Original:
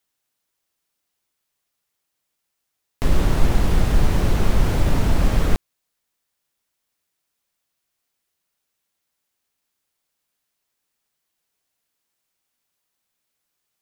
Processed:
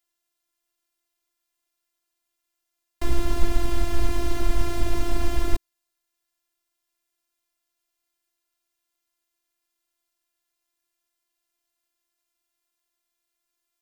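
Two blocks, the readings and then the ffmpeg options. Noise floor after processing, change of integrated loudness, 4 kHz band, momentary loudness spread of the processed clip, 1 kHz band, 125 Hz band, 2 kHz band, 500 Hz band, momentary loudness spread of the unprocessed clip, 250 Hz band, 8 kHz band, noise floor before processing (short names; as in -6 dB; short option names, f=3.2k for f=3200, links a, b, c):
-82 dBFS, -7.0 dB, -4.0 dB, 3 LU, -5.0 dB, -9.5 dB, -5.5 dB, -4.5 dB, 4 LU, -6.0 dB, -3.5 dB, -78 dBFS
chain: -filter_complex "[0:a]acrossover=split=290|3000[a][b][c];[b]acompressor=threshold=-28dB:ratio=6[d];[a][d][c]amix=inputs=3:normalize=0,afftfilt=real='hypot(re,im)*cos(PI*b)':imag='0':win_size=512:overlap=0.75"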